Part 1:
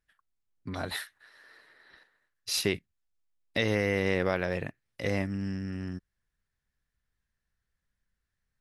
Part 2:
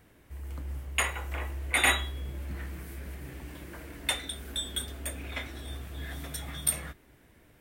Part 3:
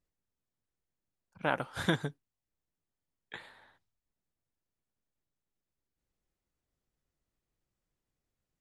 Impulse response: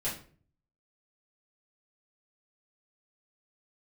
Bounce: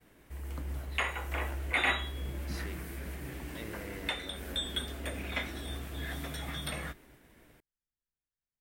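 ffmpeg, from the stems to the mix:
-filter_complex "[0:a]volume=-19dB[link_01];[1:a]agate=range=-33dB:threshold=-56dB:ratio=3:detection=peak,acrossover=split=4100[link_02][link_03];[link_03]acompressor=threshold=-49dB:ratio=4:attack=1:release=60[link_04];[link_02][link_04]amix=inputs=2:normalize=0,equalizer=frequency=88:width_type=o:width=0.61:gain=-8.5,volume=2.5dB[link_05];[2:a]volume=-18dB[link_06];[link_01][link_05][link_06]amix=inputs=3:normalize=0,alimiter=limit=-16.5dB:level=0:latency=1:release=396"

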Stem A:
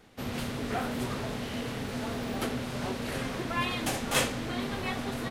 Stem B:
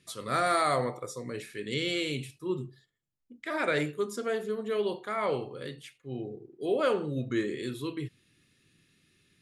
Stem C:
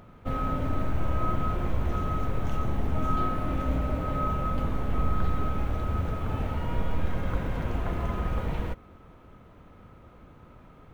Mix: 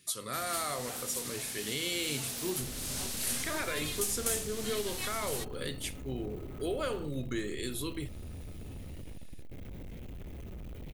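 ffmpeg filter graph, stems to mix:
ffmpeg -i stem1.wav -i stem2.wav -i stem3.wav -filter_complex "[0:a]equalizer=frequency=8600:width=0.36:gain=14.5,alimiter=limit=-15.5dB:level=0:latency=1:release=356,adelay=150,volume=-17dB[link_01];[1:a]acompressor=threshold=-39dB:ratio=2,volume=-2dB[link_02];[2:a]firequalizer=gain_entry='entry(350,0);entry(1000,-23);entry(2100,-5)':delay=0.05:min_phase=1,alimiter=limit=-20.5dB:level=0:latency=1:release=36,asoftclip=type=tanh:threshold=-34dB,adelay=2350,volume=-6.5dB[link_03];[link_01][link_02]amix=inputs=2:normalize=0,dynaudnorm=framelen=280:gausssize=13:maxgain=5dB,alimiter=level_in=2dB:limit=-24dB:level=0:latency=1:release=414,volume=-2dB,volume=0dB[link_04];[link_03][link_04]amix=inputs=2:normalize=0,aemphasis=mode=production:type=75kf" out.wav

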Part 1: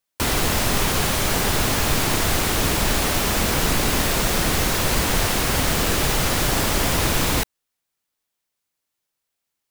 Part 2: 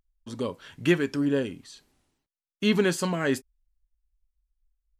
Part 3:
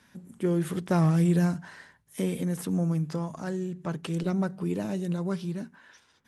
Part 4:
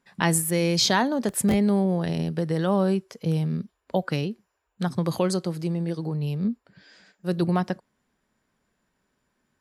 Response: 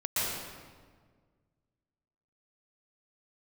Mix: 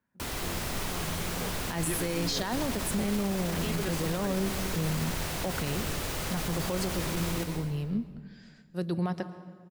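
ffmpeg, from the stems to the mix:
-filter_complex "[0:a]volume=-16dB,asplit=2[link_01][link_02];[link_02]volume=-11.5dB[link_03];[1:a]adelay=1000,volume=-11.5dB[link_04];[2:a]acrusher=bits=5:mode=log:mix=0:aa=0.000001,lowpass=1500,volume=-18dB[link_05];[3:a]adelay=1500,volume=-6dB,asplit=2[link_06][link_07];[link_07]volume=-22dB[link_08];[4:a]atrim=start_sample=2205[link_09];[link_03][link_08]amix=inputs=2:normalize=0[link_10];[link_10][link_09]afir=irnorm=-1:irlink=0[link_11];[link_01][link_04][link_05][link_06][link_11]amix=inputs=5:normalize=0,alimiter=limit=-21dB:level=0:latency=1:release=18"

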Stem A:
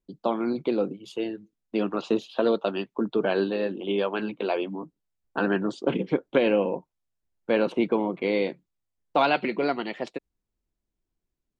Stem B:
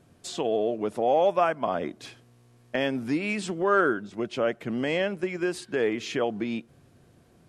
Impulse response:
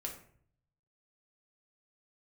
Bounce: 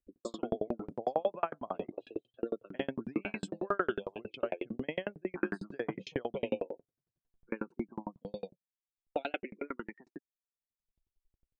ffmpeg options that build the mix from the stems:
-filter_complex "[0:a]acompressor=mode=upward:threshold=-28dB:ratio=2.5,asplit=2[link_01][link_02];[link_02]afreqshift=-0.43[link_03];[link_01][link_03]amix=inputs=2:normalize=1,volume=-3dB[link_04];[1:a]volume=-2dB,asplit=2[link_05][link_06];[link_06]volume=-19dB[link_07];[2:a]atrim=start_sample=2205[link_08];[link_07][link_08]afir=irnorm=-1:irlink=0[link_09];[link_04][link_05][link_09]amix=inputs=3:normalize=0,afftdn=noise_reduction=26:noise_floor=-39,aeval=exprs='val(0)*pow(10,-40*if(lt(mod(11*n/s,1),2*abs(11)/1000),1-mod(11*n/s,1)/(2*abs(11)/1000),(mod(11*n/s,1)-2*abs(11)/1000)/(1-2*abs(11)/1000))/20)':channel_layout=same"

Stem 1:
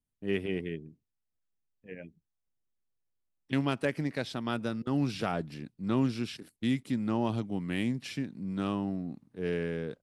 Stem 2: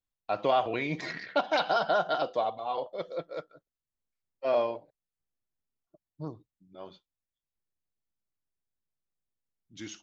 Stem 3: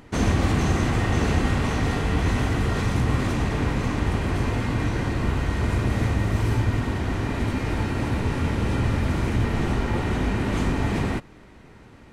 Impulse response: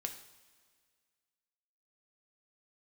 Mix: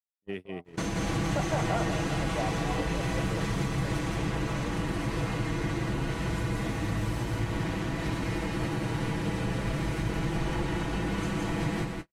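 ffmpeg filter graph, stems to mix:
-filter_complex "[0:a]volume=-4dB,asplit=2[link_01][link_02];[1:a]lowpass=1100,volume=-4dB[link_03];[2:a]highshelf=frequency=3700:gain=3.5,aecho=1:1:6.1:0.89,adelay=650,volume=-1dB,asplit=2[link_04][link_05];[link_05]volume=-11dB[link_06];[link_02]apad=whole_len=442156[link_07];[link_03][link_07]sidechaincompress=threshold=-53dB:ratio=4:attack=9.7:release=527[link_08];[link_01][link_04]amix=inputs=2:normalize=0,highpass=44,acompressor=threshold=-30dB:ratio=5,volume=0dB[link_09];[link_06]aecho=0:1:170:1[link_10];[link_08][link_09][link_10]amix=inputs=3:normalize=0,agate=range=-39dB:threshold=-36dB:ratio=16:detection=peak"

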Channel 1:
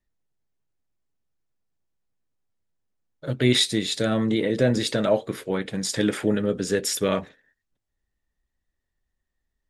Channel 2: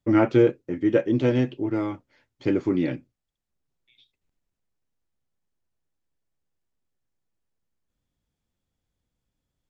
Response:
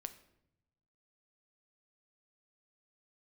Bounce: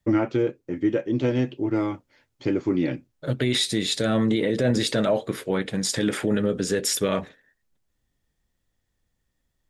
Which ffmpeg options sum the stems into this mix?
-filter_complex "[0:a]alimiter=limit=-15dB:level=0:latency=1:release=31,volume=2dB[link_01];[1:a]bass=frequency=250:gain=0,treble=frequency=4000:gain=3,volume=2dB[link_02];[link_01][link_02]amix=inputs=2:normalize=0,alimiter=limit=-13dB:level=0:latency=1:release=472"

